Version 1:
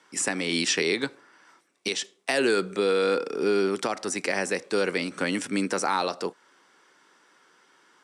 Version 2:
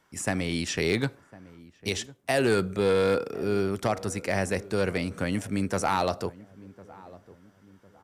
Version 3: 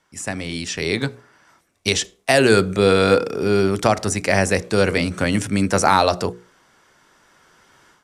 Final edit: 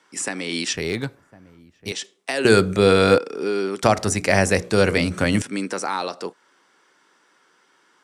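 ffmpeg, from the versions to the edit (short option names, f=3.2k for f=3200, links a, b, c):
-filter_complex "[2:a]asplit=2[a][b];[0:a]asplit=4[c][d][e][f];[c]atrim=end=0.732[g];[1:a]atrim=start=0.728:end=1.922[h];[d]atrim=start=1.918:end=2.452[i];[a]atrim=start=2.448:end=3.182[j];[e]atrim=start=3.178:end=3.832[k];[b]atrim=start=3.828:end=5.422[l];[f]atrim=start=5.418[m];[g][h]acrossfade=d=0.004:c1=hsin:c2=hsin[n];[n][i]acrossfade=d=0.004:c1=hsin:c2=hsin[o];[o][j]acrossfade=d=0.004:c1=hsin:c2=hsin[p];[p][k]acrossfade=d=0.004:c1=hsin:c2=hsin[q];[q][l]acrossfade=d=0.004:c1=hsin:c2=hsin[r];[r][m]acrossfade=d=0.004:c1=hsin:c2=hsin"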